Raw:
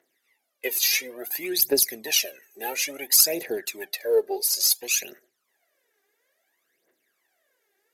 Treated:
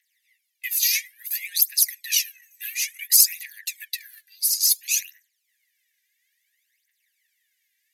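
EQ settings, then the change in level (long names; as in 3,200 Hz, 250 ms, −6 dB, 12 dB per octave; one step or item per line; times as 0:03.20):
Butterworth high-pass 1,800 Hz 72 dB per octave
dynamic equaliser 3,100 Hz, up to −5 dB, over −36 dBFS, Q 0.94
+3.0 dB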